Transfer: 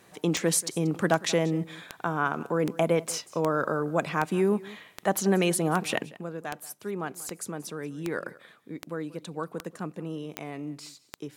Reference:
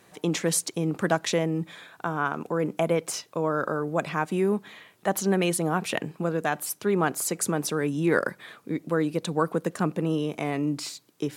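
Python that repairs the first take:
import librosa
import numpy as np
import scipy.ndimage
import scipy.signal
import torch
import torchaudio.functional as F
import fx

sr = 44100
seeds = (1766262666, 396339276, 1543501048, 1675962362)

y = fx.fix_declick_ar(x, sr, threshold=10.0)
y = fx.fix_echo_inverse(y, sr, delay_ms=184, level_db=-20.0)
y = fx.gain(y, sr, db=fx.steps((0.0, 0.0), (6.03, 9.5)))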